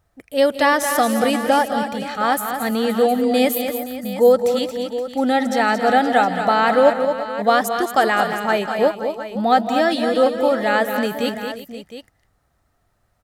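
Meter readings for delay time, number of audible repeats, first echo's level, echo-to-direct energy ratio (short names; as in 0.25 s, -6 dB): 0.168 s, 5, -17.5 dB, -5.0 dB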